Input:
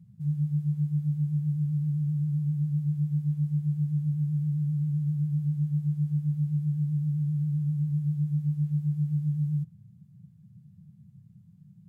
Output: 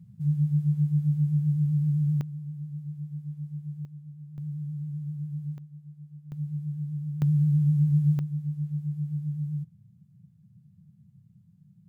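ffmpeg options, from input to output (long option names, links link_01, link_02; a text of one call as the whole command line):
ffmpeg -i in.wav -af "asetnsamples=nb_out_samples=441:pad=0,asendcmd='2.21 volume volume -9dB;3.85 volume volume -16dB;4.38 volume volume -6.5dB;5.58 volume volume -18dB;6.32 volume volume -5dB;7.22 volume volume 5.5dB;8.19 volume volume -3.5dB',volume=3dB" out.wav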